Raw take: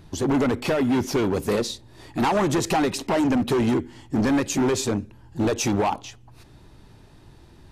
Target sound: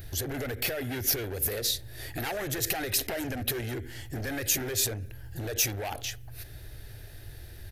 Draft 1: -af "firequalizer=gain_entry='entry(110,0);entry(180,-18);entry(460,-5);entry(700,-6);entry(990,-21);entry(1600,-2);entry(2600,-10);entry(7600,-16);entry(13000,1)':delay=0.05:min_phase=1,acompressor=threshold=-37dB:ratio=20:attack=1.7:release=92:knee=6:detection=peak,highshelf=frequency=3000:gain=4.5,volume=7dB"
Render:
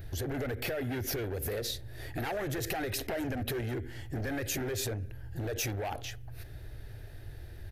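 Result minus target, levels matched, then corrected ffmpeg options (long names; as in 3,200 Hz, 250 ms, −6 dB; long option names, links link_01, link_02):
8,000 Hz band −5.0 dB
-af "firequalizer=gain_entry='entry(110,0);entry(180,-18);entry(460,-5);entry(700,-6);entry(990,-21);entry(1600,-2);entry(2600,-10);entry(7600,-16);entry(13000,1)':delay=0.05:min_phase=1,acompressor=threshold=-37dB:ratio=20:attack=1.7:release=92:knee=6:detection=peak,highshelf=frequency=3000:gain=16,volume=7dB"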